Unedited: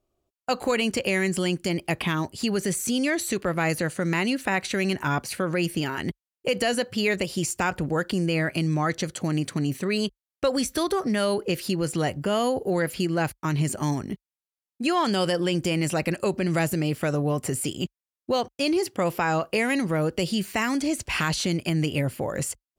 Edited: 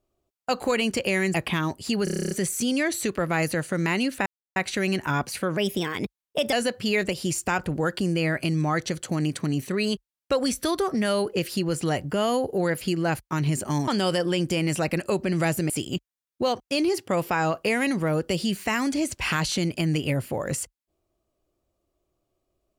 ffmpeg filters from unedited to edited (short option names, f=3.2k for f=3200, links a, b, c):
-filter_complex "[0:a]asplit=16[a][b][c][d][e][f][g][h][i][j][k][l][m][n][o][p];[a]atrim=end=1.342[q];[b]atrim=start=1.878:end=2.612[r];[c]atrim=start=2.578:end=2.612[s];[d]atrim=start=2.578:end=2.612[t];[e]atrim=start=2.578:end=2.612[u];[f]atrim=start=2.578:end=2.612[v];[g]atrim=start=2.578:end=2.612[w];[h]atrim=start=2.578:end=2.612[x];[i]atrim=start=2.578:end=2.612[y];[j]atrim=start=2.578:end=2.612[z];[k]atrim=start=2.578:end=4.53,asetpts=PTS-STARTPTS,afade=t=out:st=1.948:d=0.004:c=hsin,apad=pad_dur=0.3[aa];[l]atrim=start=4.53:end=5.544,asetpts=PTS-STARTPTS,afade=t=in:d=0.004:c=hsin[ab];[m]atrim=start=5.54:end=6.65,asetpts=PTS-STARTPTS,asetrate=51156,aresample=44100,atrim=end_sample=42199,asetpts=PTS-STARTPTS[ac];[n]atrim=start=6.646:end=14.002[ad];[o]atrim=start=15.018:end=16.842[ae];[p]atrim=start=17.578[af];[q][r]acrossfade=d=0.004:c1=hsin:c2=hsin[ag];[ag][s]acrossfade=d=0.004:c1=hsin:c2=hsin[ah];[ah][t]acrossfade=d=0.004:c1=hsin:c2=hsin[ai];[ai][u]acrossfade=d=0.004:c1=hsin:c2=hsin[aj];[aj][v]acrossfade=d=0.004:c1=hsin:c2=hsin[ak];[ak][w]acrossfade=d=0.004:c1=hsin:c2=hsin[al];[al][x]acrossfade=d=0.004:c1=hsin:c2=hsin[am];[am][y]acrossfade=d=0.004:c1=hsin:c2=hsin[an];[an][z]acrossfade=d=0.004:c1=hsin:c2=hsin[ao];[aa][ab]concat=n=2:v=0:a=1[ap];[ao][ap]acrossfade=d=0.004:c1=hsin:c2=hsin[aq];[aq][ac]acrossfade=d=0.004:c1=hsin:c2=hsin[ar];[ar][ad]acrossfade=d=0.004:c1=hsin:c2=hsin[as];[as][ae]acrossfade=d=0.004:c1=hsin:c2=hsin[at];[at][af]acrossfade=d=0.004:c1=hsin:c2=hsin"